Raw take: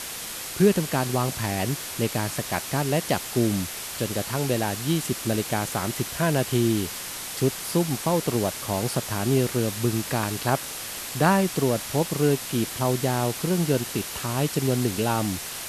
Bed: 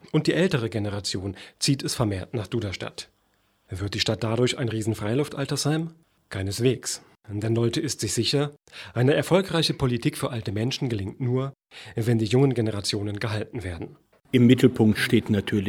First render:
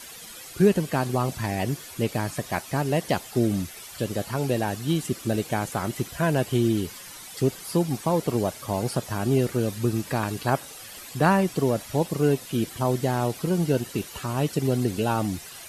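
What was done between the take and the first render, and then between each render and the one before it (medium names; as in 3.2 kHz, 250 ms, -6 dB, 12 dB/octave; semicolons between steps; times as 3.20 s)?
noise reduction 12 dB, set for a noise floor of -35 dBFS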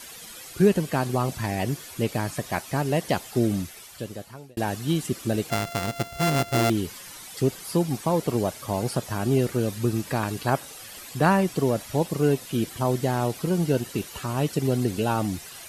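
3.50–4.57 s: fade out; 5.50–6.70 s: sorted samples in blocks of 64 samples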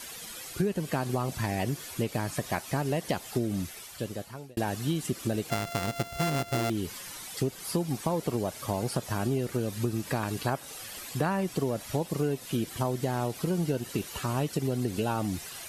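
compression, threshold -25 dBFS, peak gain reduction 12 dB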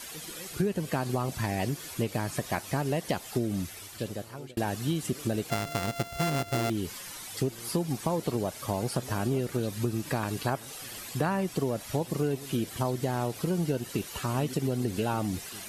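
add bed -26.5 dB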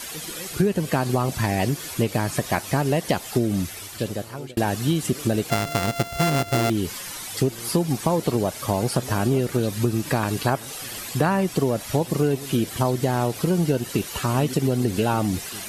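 trim +7.5 dB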